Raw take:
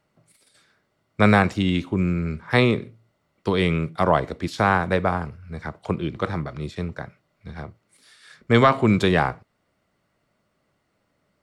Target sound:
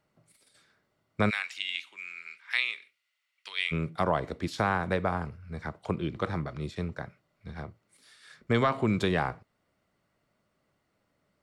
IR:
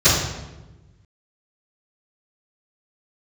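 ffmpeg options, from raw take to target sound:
-filter_complex "[0:a]acompressor=threshold=-20dB:ratio=2,asplit=3[link_01][link_02][link_03];[link_01]afade=type=out:start_time=1.29:duration=0.02[link_04];[link_02]highpass=frequency=2400:width_type=q:width=2.1,afade=type=in:start_time=1.29:duration=0.02,afade=type=out:start_time=3.71:duration=0.02[link_05];[link_03]afade=type=in:start_time=3.71:duration=0.02[link_06];[link_04][link_05][link_06]amix=inputs=3:normalize=0,volume=-4.5dB"

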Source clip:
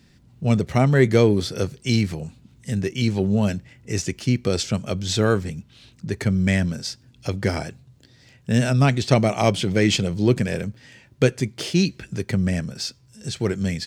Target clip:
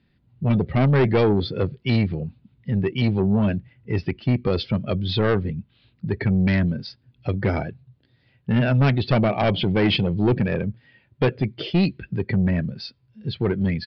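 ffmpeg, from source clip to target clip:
ffmpeg -i in.wav -af "afftdn=noise_reduction=13:noise_floor=-32,lowpass=frequency=3900:width=0.5412,lowpass=frequency=3900:width=1.3066,aresample=11025,asoftclip=type=tanh:threshold=-16.5dB,aresample=44100,volume=3.5dB" out.wav

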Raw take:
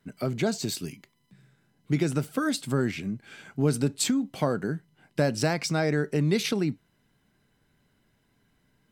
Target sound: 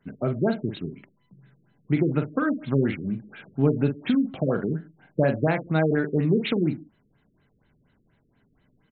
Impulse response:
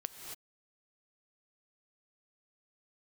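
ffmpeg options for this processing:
-filter_complex "[0:a]asplit=2[link_01][link_02];[link_02]adelay=44,volume=-7.5dB[link_03];[link_01][link_03]amix=inputs=2:normalize=0,asplit=2[link_04][link_05];[1:a]atrim=start_sample=2205,asetrate=83790,aresample=44100[link_06];[link_05][link_06]afir=irnorm=-1:irlink=0,volume=-9dB[link_07];[link_04][link_07]amix=inputs=2:normalize=0,afftfilt=real='re*lt(b*sr/1024,500*pow(4300/500,0.5+0.5*sin(2*PI*4.2*pts/sr)))':imag='im*lt(b*sr/1024,500*pow(4300/500,0.5+0.5*sin(2*PI*4.2*pts/sr)))':win_size=1024:overlap=0.75,volume=1.5dB"

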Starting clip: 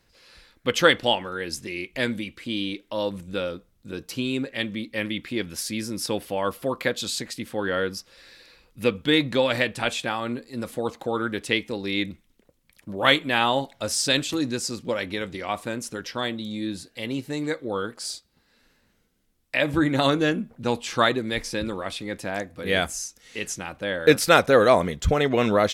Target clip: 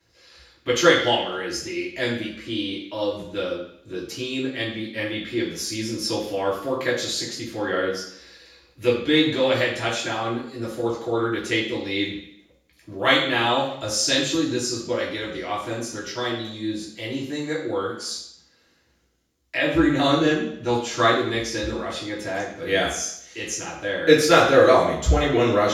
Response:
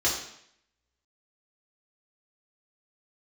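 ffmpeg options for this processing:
-filter_complex "[1:a]atrim=start_sample=2205[link_01];[0:a][link_01]afir=irnorm=-1:irlink=0,volume=-10dB"

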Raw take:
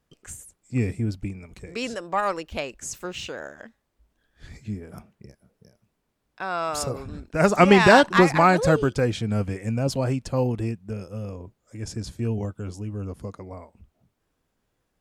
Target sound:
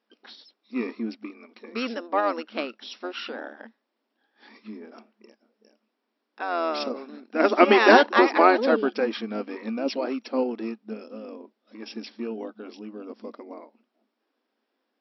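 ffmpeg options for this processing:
ffmpeg -i in.wav -filter_complex "[0:a]asplit=2[link_01][link_02];[link_02]asetrate=22050,aresample=44100,atempo=2,volume=-5dB[link_03];[link_01][link_03]amix=inputs=2:normalize=0,afftfilt=real='re*between(b*sr/4096,210,5700)':imag='im*between(b*sr/4096,210,5700)':win_size=4096:overlap=0.75,volume=-1dB" out.wav

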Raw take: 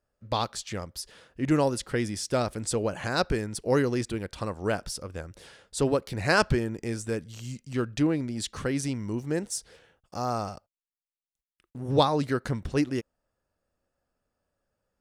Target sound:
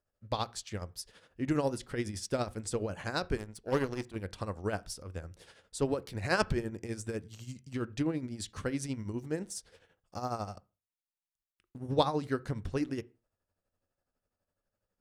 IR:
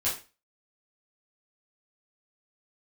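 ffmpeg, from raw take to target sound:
-filter_complex "[0:a]asettb=1/sr,asplit=3[link_01][link_02][link_03];[link_01]atrim=end=3.374[link_04];[link_02]atrim=start=3.37:end=4.16,asetpts=PTS-STARTPTS,afade=type=in:duration=0.004:curve=qsin,afade=type=out:start_time=0.786:duration=0.004:curve=qsin,aeval=exprs='0.251*(cos(1*acos(clip(val(0)/0.251,-1,1)))-cos(1*PI/2))+0.0251*(cos(7*acos(clip(val(0)/0.251,-1,1)))-cos(7*PI/2))':channel_layout=same[link_05];[link_03]atrim=start=4.156[link_06];[link_04][link_05]acrossfade=duration=0.004:curve1=hsin:curve2=qsin[link_07];[link_07][link_06]acrossfade=duration=0.004:curve1=qsin:curve2=hsin,tremolo=f=12:d=0.65,asplit=2[link_08][link_09];[1:a]atrim=start_sample=2205,lowpass=2500,lowshelf=frequency=200:gain=11.5[link_10];[link_09][link_10]afir=irnorm=-1:irlink=0,volume=-24.5dB[link_11];[link_08][link_11]amix=inputs=2:normalize=0,volume=-4dB"

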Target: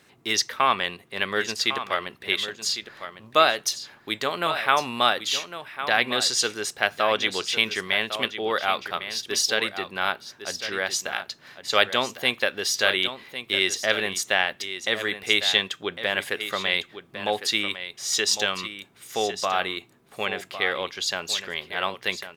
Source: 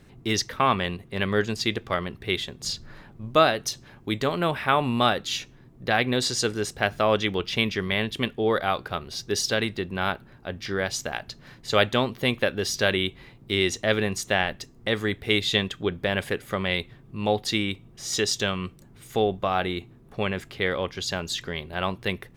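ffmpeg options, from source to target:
ffmpeg -i in.wav -filter_complex "[0:a]highpass=frequency=1000:poles=1,asplit=2[link_01][link_02];[link_02]aecho=0:1:1104:0.282[link_03];[link_01][link_03]amix=inputs=2:normalize=0,volume=4dB" out.wav

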